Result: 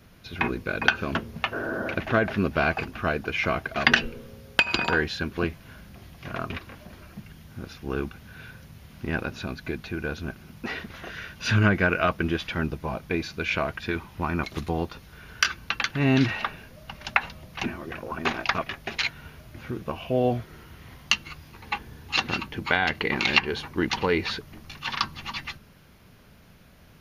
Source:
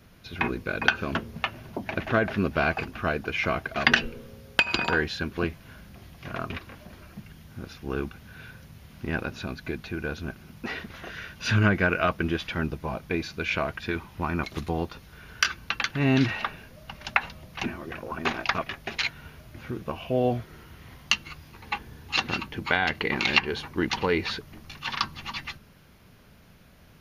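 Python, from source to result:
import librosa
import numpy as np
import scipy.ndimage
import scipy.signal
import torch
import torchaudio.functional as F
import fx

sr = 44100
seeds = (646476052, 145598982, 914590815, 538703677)

y = fx.spec_repair(x, sr, seeds[0], start_s=1.55, length_s=0.36, low_hz=220.0, high_hz=1900.0, source='after')
y = y * librosa.db_to_amplitude(1.0)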